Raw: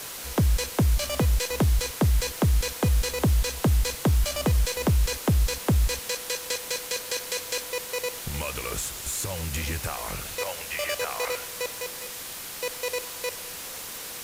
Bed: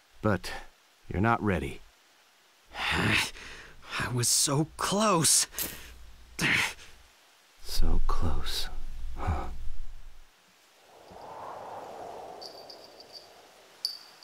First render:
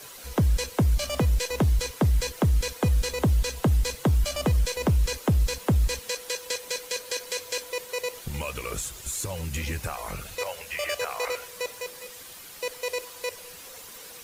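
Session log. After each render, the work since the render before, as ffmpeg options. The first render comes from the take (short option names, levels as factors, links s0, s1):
-af "afftdn=nr=9:nf=-38"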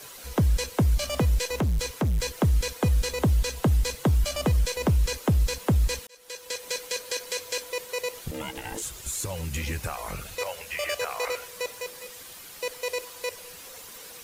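-filter_complex "[0:a]asettb=1/sr,asplit=3[s0][s1][s2];[s0]atrim=end=1.594[s3];[s1]atrim=start=1.59:end=2.21,asetpts=PTS-STARTPTS,afade=t=in:d=0.004:c=qsin,afade=t=out:st=0.616:d=0.004:c=qsin,volume=11.9,asoftclip=hard,volume=0.0841[s4];[s2]atrim=start=2.206[s5];[s3][s4]acrossfade=d=0.004:c1=hsin:c2=qsin[s6];[s6][s5]acrossfade=d=0.004:c1=qsin:c2=hsin,asettb=1/sr,asplit=3[s7][s8][s9];[s7]atrim=end=8.314[s10];[s8]atrim=start=8.31:end=8.82,asetpts=PTS-STARTPTS,afade=t=in:d=0.004:c=qsin,afade=t=out:st=0.506:d=0.004:c=qsin,aeval=exprs='val(0)*sin(2*PI*390*n/s)':c=same[s11];[s9]atrim=start=8.816[s12];[s10][s11]acrossfade=d=0.004:c1=hsin:c2=qsin[s13];[s13][s12]acrossfade=d=0.004:c1=qsin:c2=hsin,asplit=2[s14][s15];[s14]atrim=end=6.07,asetpts=PTS-STARTPTS,afade=t=out:st=6.066:d=0.004:c=hsin[s16];[s15]atrim=start=6.07,asetpts=PTS-STARTPTS,afade=t=in:d=0.64[s17];[s16][s17]concat=n=2:v=0:a=1"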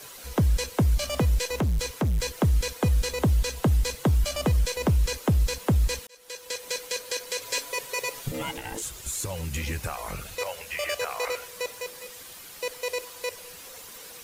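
-filter_complex "[0:a]asettb=1/sr,asplit=3[s0][s1][s2];[s0]atrim=end=7.414[s3];[s1]atrim=start=7.41:end=8.57,asetpts=PTS-STARTPTS,afade=t=in:d=0.004:c=qsin,afade=t=out:st=1.156:d=0.004:c=qsin,aecho=1:1:7.2:0.99,atrim=end_sample=51156[s4];[s2]atrim=start=8.566[s5];[s3][s4]acrossfade=d=0.004:c1=hsin:c2=qsin[s6];[s6][s5]acrossfade=d=0.004:c1=qsin:c2=hsin"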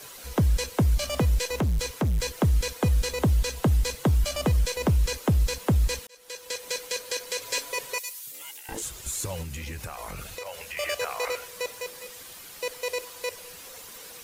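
-filter_complex "[0:a]asettb=1/sr,asplit=3[s0][s1][s2];[s0]atrim=end=7.984[s3];[s1]atrim=start=7.98:end=8.69,asetpts=PTS-STARTPTS,afade=t=in:d=0.004:c=qsin,afade=t=out:st=0.706:d=0.004:c=qsin,aderivative[s4];[s2]atrim=start=8.686[s5];[s3][s4]acrossfade=d=0.004:c1=hsin:c2=qsin[s6];[s6][s5]acrossfade=d=0.004:c1=qsin:c2=hsin,asettb=1/sr,asplit=3[s7][s8][s9];[s7]atrim=end=9.424[s10];[s8]atrim=start=9.42:end=10.77,asetpts=PTS-STARTPTS,afade=t=in:d=0.004:c=qsin,afade=t=out:st=1.346:d=0.004:c=qsin,acompressor=threshold=0.0251:ratio=6:attack=3.2:release=140:knee=1:detection=peak[s11];[s9]atrim=start=10.766[s12];[s10][s11]acrossfade=d=0.004:c1=hsin:c2=qsin[s13];[s13][s12]acrossfade=d=0.004:c1=qsin:c2=hsin"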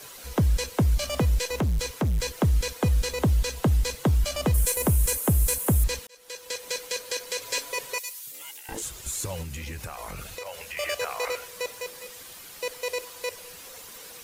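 -filter_complex "[0:a]asettb=1/sr,asplit=3[s0][s1][s2];[s0]atrim=end=4.544[s3];[s1]atrim=start=4.54:end=5.84,asetpts=PTS-STARTPTS,afade=t=in:d=0.004:c=qsin,afade=t=out:st=1.296:d=0.004:c=qsin,highshelf=f=7000:t=q:w=1.5:g=13.5[s4];[s2]atrim=start=5.836[s5];[s3][s4]acrossfade=d=0.004:c1=hsin:c2=qsin[s6];[s6][s5]acrossfade=d=0.004:c1=qsin:c2=hsin"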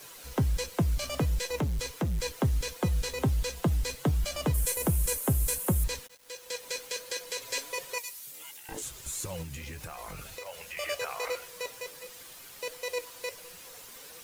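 -af "flanger=delay=5.5:depth=2.2:regen=63:speed=1.4:shape=sinusoidal,acrusher=bits=8:mix=0:aa=0.000001"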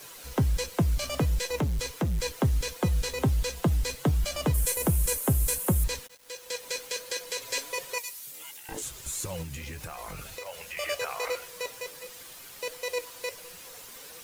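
-af "volume=1.26"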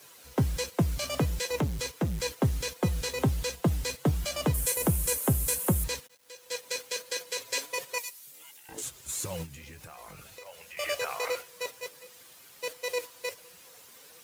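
-af "highpass=76,agate=range=0.447:threshold=0.0158:ratio=16:detection=peak"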